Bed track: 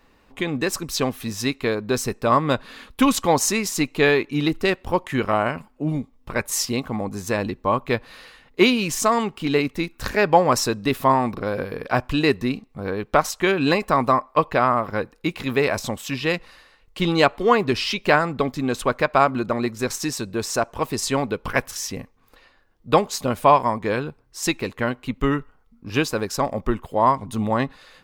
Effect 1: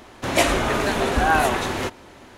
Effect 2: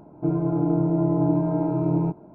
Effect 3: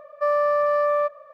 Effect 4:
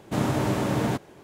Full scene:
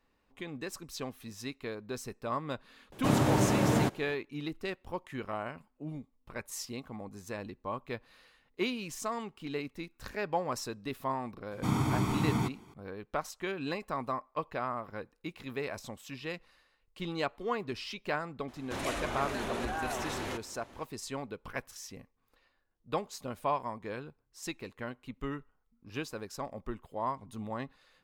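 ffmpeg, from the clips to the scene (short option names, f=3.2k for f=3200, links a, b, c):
-filter_complex "[4:a]asplit=2[a][b];[0:a]volume=-16.5dB[c];[b]aecho=1:1:0.9:0.82[d];[1:a]acompressor=threshold=-25dB:ratio=4:attack=8.6:release=21:knee=1:detection=rms[e];[a]atrim=end=1.23,asetpts=PTS-STARTPTS,volume=-1.5dB,afade=t=in:d=0.004:c=hsin,afade=t=out:st=1.226:d=0.004:c=hsin,adelay=2920[f];[d]atrim=end=1.23,asetpts=PTS-STARTPTS,volume=-7.5dB,afade=t=in:d=0.004:c=hsin,afade=t=out:st=1.226:d=0.004:c=hsin,adelay=11510[g];[e]atrim=end=2.37,asetpts=PTS-STARTPTS,volume=-10.5dB,afade=t=in:d=0.004:c=hsin,afade=t=out:st=2.366:d=0.004:c=hsin,adelay=18480[h];[c][f][g][h]amix=inputs=4:normalize=0"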